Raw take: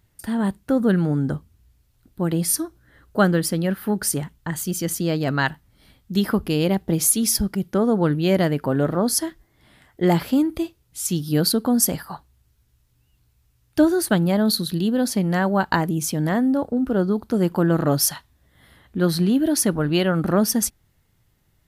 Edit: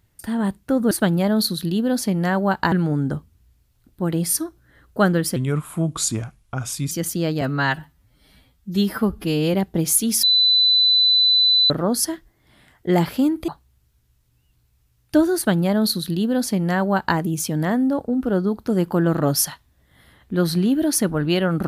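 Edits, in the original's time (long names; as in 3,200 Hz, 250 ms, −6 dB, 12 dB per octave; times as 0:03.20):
0:03.55–0:04.76: play speed 78%
0:05.26–0:06.68: time-stretch 1.5×
0:07.37–0:08.84: beep over 4,000 Hz −12.5 dBFS
0:10.62–0:12.12: remove
0:14.00–0:15.81: duplicate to 0:00.91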